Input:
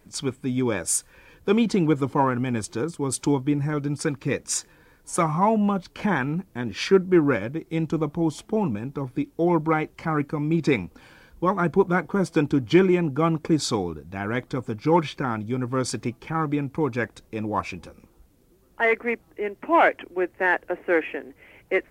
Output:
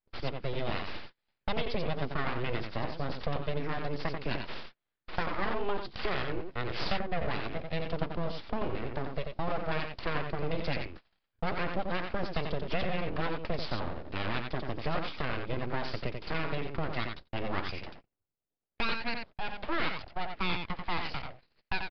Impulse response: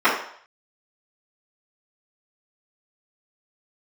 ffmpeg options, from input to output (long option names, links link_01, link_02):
-filter_complex "[0:a]bass=frequency=250:gain=0,treble=frequency=4000:gain=-7,acrossover=split=130|3100[link_01][link_02][link_03];[link_01]acompressor=threshold=-40dB:ratio=4[link_04];[link_02]acompressor=threshold=-30dB:ratio=4[link_05];[link_03]acompressor=threshold=-47dB:ratio=4[link_06];[link_04][link_05][link_06]amix=inputs=3:normalize=0,highshelf=frequency=3500:gain=12,aecho=1:1:89:0.531,aeval=exprs='abs(val(0))':channel_layout=same,aresample=11025,aresample=44100,agate=range=-34dB:threshold=-43dB:ratio=16:detection=peak"